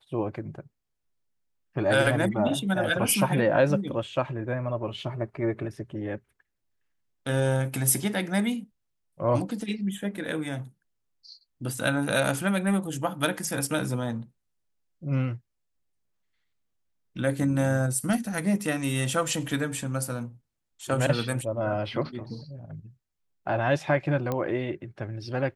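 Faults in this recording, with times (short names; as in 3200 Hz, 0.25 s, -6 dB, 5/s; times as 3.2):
24.32 pop -16 dBFS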